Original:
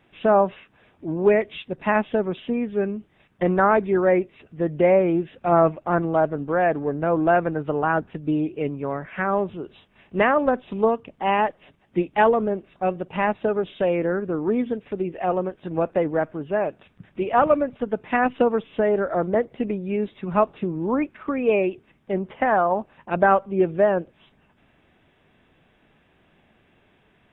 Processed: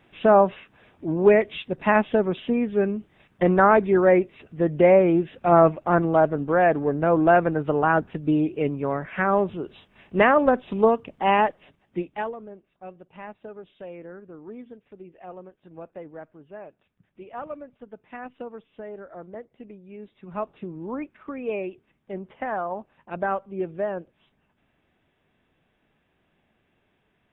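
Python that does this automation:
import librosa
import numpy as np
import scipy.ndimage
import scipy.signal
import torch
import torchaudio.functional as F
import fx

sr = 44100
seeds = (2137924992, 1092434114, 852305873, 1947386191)

y = fx.gain(x, sr, db=fx.line((11.37, 1.5), (12.11, -7.5), (12.36, -17.5), (19.91, -17.5), (20.54, -9.0)))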